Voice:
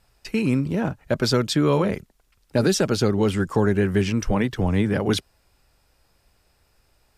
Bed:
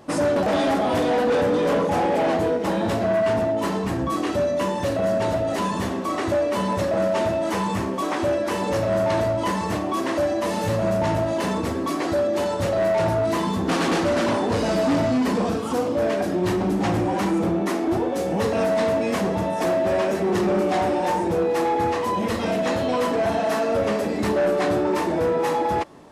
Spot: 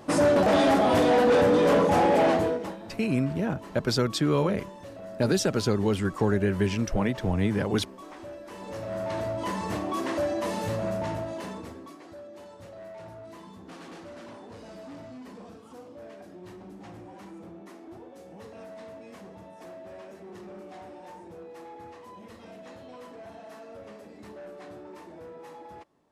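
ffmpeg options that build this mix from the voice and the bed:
-filter_complex "[0:a]adelay=2650,volume=0.596[s0];[1:a]volume=5.01,afade=t=out:st=2.24:d=0.53:silence=0.105925,afade=t=in:st=8.46:d=1.35:silence=0.199526,afade=t=out:st=10.45:d=1.53:silence=0.133352[s1];[s0][s1]amix=inputs=2:normalize=0"

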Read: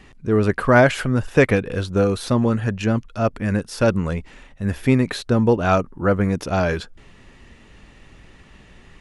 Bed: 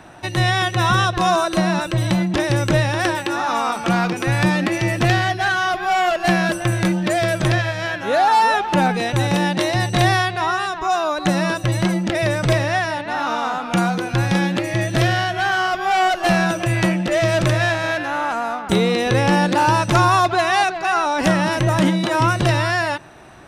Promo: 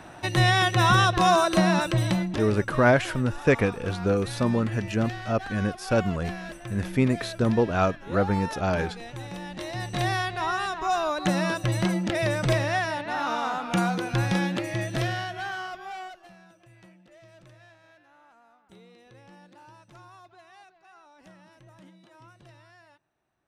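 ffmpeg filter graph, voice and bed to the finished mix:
-filter_complex "[0:a]adelay=2100,volume=0.531[s0];[1:a]volume=3.35,afade=t=out:st=1.84:d=0.7:silence=0.149624,afade=t=in:st=9.47:d=1.22:silence=0.223872,afade=t=out:st=14.2:d=2.09:silence=0.0334965[s1];[s0][s1]amix=inputs=2:normalize=0"

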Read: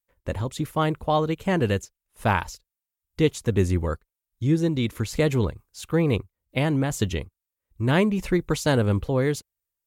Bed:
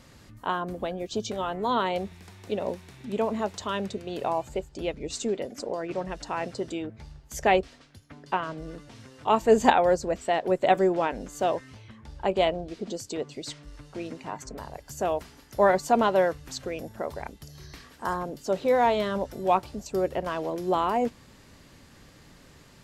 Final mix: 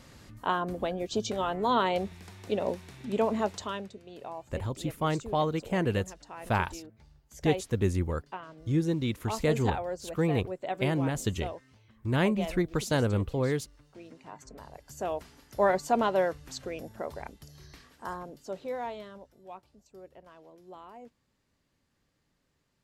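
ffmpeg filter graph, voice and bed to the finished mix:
-filter_complex "[0:a]adelay=4250,volume=0.531[s0];[1:a]volume=2.82,afade=t=out:st=3.47:d=0.43:silence=0.223872,afade=t=in:st=14.04:d=1.43:silence=0.354813,afade=t=out:st=17.17:d=2.15:silence=0.112202[s1];[s0][s1]amix=inputs=2:normalize=0"

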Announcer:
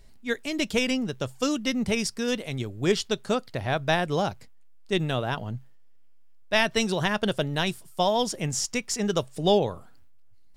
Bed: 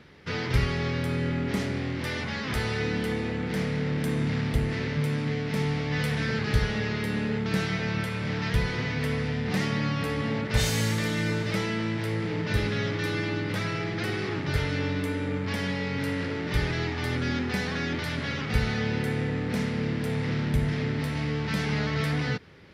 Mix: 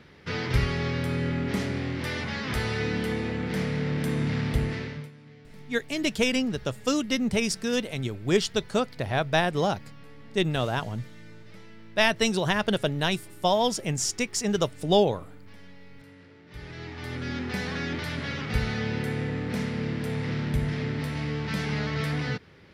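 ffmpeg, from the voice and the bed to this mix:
-filter_complex "[0:a]adelay=5450,volume=1.06[s0];[1:a]volume=10,afade=t=out:st=4.63:d=0.48:silence=0.0841395,afade=t=in:st=16.47:d=1.21:silence=0.1[s1];[s0][s1]amix=inputs=2:normalize=0"

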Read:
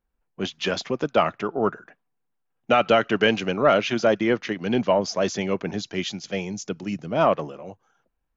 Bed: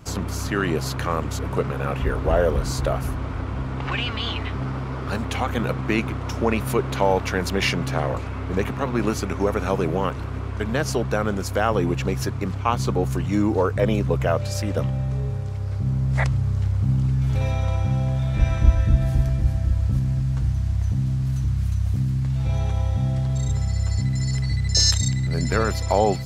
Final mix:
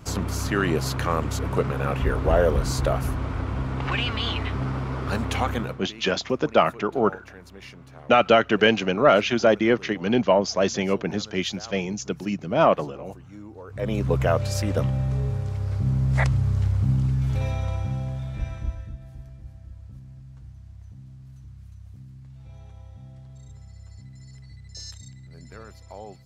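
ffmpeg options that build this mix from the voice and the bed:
-filter_complex "[0:a]adelay=5400,volume=1.19[s0];[1:a]volume=11.9,afade=t=out:st=5.46:d=0.37:silence=0.0841395,afade=t=in:st=13.66:d=0.49:silence=0.0841395,afade=t=out:st=16.62:d=2.35:silence=0.0841395[s1];[s0][s1]amix=inputs=2:normalize=0"

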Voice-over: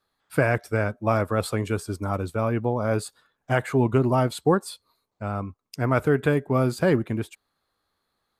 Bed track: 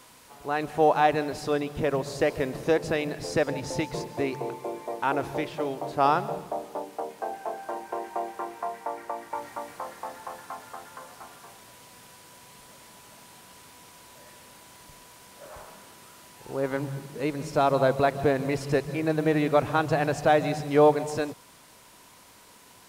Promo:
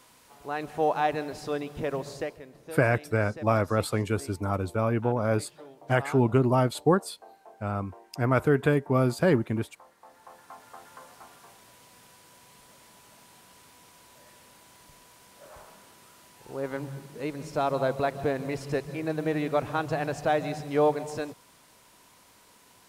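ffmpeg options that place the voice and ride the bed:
-filter_complex "[0:a]adelay=2400,volume=0.841[s0];[1:a]volume=2.82,afade=t=out:st=2.08:d=0.32:silence=0.211349,afade=t=in:st=9.99:d=0.93:silence=0.211349[s1];[s0][s1]amix=inputs=2:normalize=0"

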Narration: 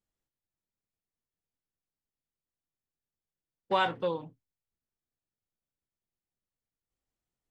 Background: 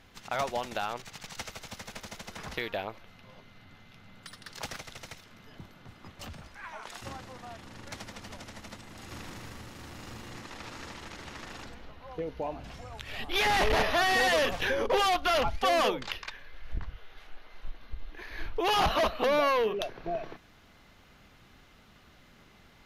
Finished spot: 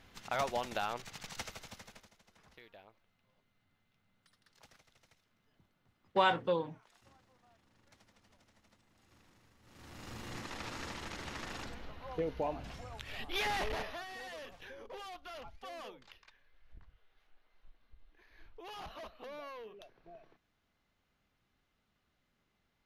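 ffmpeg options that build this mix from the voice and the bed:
-filter_complex "[0:a]adelay=2450,volume=0.891[s0];[1:a]volume=10,afade=t=out:st=1.39:d=0.73:silence=0.1,afade=t=in:st=9.61:d=0.75:silence=0.0707946,afade=t=out:st=12.24:d=1.82:silence=0.0841395[s1];[s0][s1]amix=inputs=2:normalize=0"

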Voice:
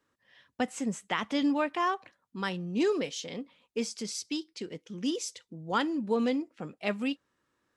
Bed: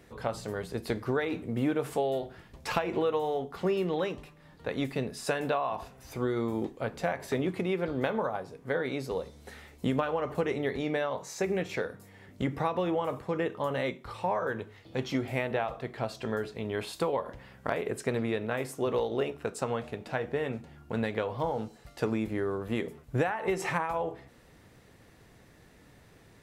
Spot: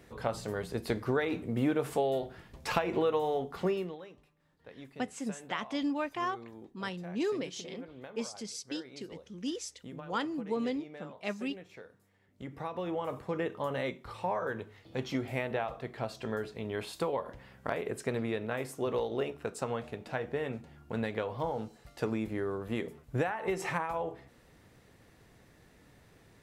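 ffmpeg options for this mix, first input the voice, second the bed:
-filter_complex "[0:a]adelay=4400,volume=0.562[s0];[1:a]volume=5.01,afade=t=out:st=3.62:d=0.36:silence=0.141254,afade=t=in:st=12.3:d=0.91:silence=0.188365[s1];[s0][s1]amix=inputs=2:normalize=0"

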